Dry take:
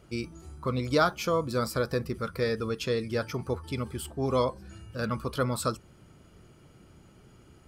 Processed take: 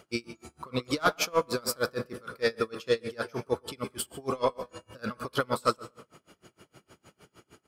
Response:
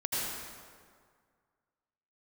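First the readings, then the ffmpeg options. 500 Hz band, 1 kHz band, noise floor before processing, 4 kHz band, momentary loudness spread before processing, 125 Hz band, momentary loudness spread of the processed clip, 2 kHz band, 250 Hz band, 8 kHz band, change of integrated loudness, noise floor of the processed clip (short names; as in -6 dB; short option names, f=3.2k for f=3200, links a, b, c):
-1.0 dB, 0.0 dB, -57 dBFS, +2.0 dB, 11 LU, -9.0 dB, 13 LU, +1.5 dB, -3.5 dB, +3.0 dB, -1.0 dB, -77 dBFS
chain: -filter_complex "[0:a]highpass=f=460:p=1,asoftclip=type=tanh:threshold=-20dB,asplit=2[a][b];[b]adelay=119,lowpass=f=1.5k:p=1,volume=-10.5dB,asplit=2[c][d];[d]adelay=119,lowpass=f=1.5k:p=1,volume=0.42,asplit=2[e][f];[f]adelay=119,lowpass=f=1.5k:p=1,volume=0.42,asplit=2[g][h];[h]adelay=119,lowpass=f=1.5k:p=1,volume=0.42[i];[a][c][e][g][i]amix=inputs=5:normalize=0,asplit=2[j][k];[1:a]atrim=start_sample=2205,asetrate=79380,aresample=44100[l];[k][l]afir=irnorm=-1:irlink=0,volume=-16dB[m];[j][m]amix=inputs=2:normalize=0,aeval=exprs='val(0)*pow(10,-30*(0.5-0.5*cos(2*PI*6.5*n/s))/20)':c=same,volume=9dB"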